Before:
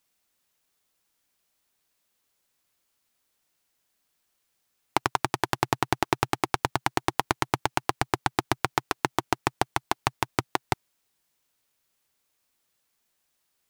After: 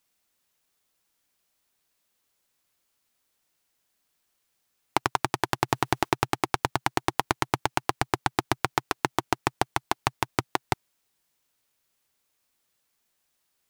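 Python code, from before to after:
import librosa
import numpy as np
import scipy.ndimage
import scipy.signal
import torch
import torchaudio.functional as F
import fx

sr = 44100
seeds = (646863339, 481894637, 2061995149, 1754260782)

y = fx.law_mismatch(x, sr, coded='mu', at=(5.68, 6.08), fade=0.02)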